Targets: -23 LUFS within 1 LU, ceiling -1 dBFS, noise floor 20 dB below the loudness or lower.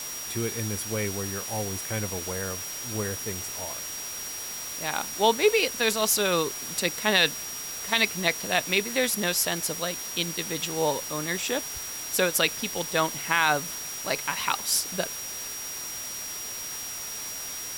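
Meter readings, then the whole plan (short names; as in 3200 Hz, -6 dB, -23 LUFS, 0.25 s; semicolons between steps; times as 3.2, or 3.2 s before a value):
steady tone 5700 Hz; tone level -36 dBFS; noise floor -36 dBFS; noise floor target -47 dBFS; loudness -27.0 LUFS; peak -7.5 dBFS; loudness target -23.0 LUFS
-> notch 5700 Hz, Q 30; denoiser 11 dB, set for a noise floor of -36 dBFS; gain +4 dB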